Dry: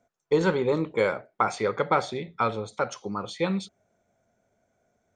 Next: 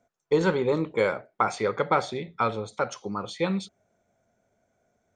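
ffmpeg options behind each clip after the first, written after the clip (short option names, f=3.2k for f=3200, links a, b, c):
-af anull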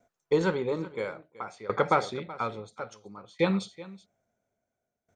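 -af "aecho=1:1:377:0.2,aeval=exprs='val(0)*pow(10,-19*if(lt(mod(0.59*n/s,1),2*abs(0.59)/1000),1-mod(0.59*n/s,1)/(2*abs(0.59)/1000),(mod(0.59*n/s,1)-2*abs(0.59)/1000)/(1-2*abs(0.59)/1000))/20)':c=same,volume=2dB"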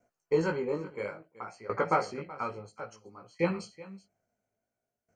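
-af "flanger=delay=17:depth=3.5:speed=0.61,asuperstop=centerf=3600:order=12:qfactor=4.3"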